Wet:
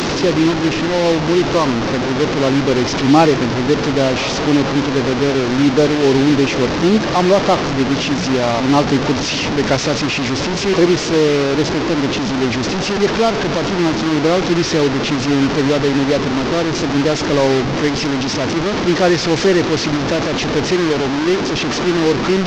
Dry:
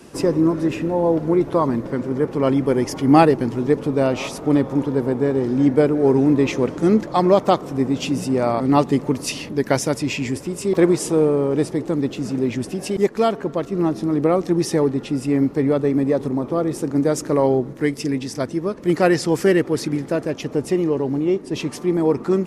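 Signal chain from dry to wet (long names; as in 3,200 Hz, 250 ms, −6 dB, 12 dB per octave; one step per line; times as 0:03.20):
linear delta modulator 32 kbit/s, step −15.5 dBFS
in parallel at −4 dB: hard clipping −12.5 dBFS, distortion −14 dB
on the sum: level −1 dB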